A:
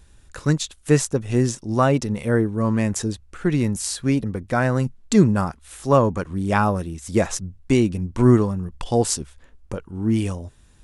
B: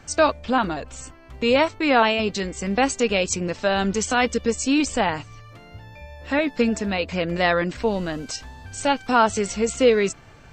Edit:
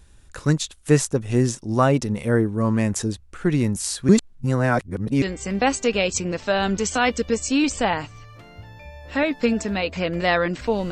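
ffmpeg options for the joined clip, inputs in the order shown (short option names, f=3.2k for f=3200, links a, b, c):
-filter_complex "[0:a]apad=whole_dur=10.91,atrim=end=10.91,asplit=2[a][b];[a]atrim=end=4.092[c];[b]atrim=start=4.088:end=5.222,asetpts=PTS-STARTPTS,areverse[d];[1:a]atrim=start=2.378:end=8.07[e];[c][d]acrossfade=d=0.004:c1=hsin:c2=hsin[f];[f][e]acrossfade=d=0.004:c1=hsin:c2=hsin"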